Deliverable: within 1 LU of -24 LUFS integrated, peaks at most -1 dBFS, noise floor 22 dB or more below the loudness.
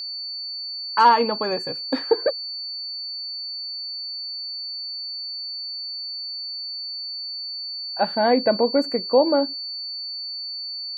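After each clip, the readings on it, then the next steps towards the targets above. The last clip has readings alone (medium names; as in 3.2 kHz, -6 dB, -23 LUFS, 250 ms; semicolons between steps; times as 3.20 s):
steady tone 4.5 kHz; tone level -29 dBFS; loudness -24.5 LUFS; peak level -5.5 dBFS; loudness target -24.0 LUFS
-> band-stop 4.5 kHz, Q 30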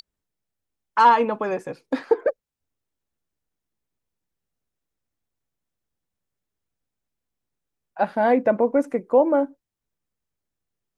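steady tone not found; loudness -21.5 LUFS; peak level -6.0 dBFS; loudness target -24.0 LUFS
-> trim -2.5 dB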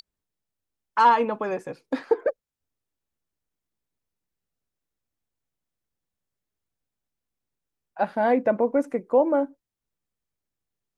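loudness -24.0 LUFS; peak level -8.5 dBFS; noise floor -87 dBFS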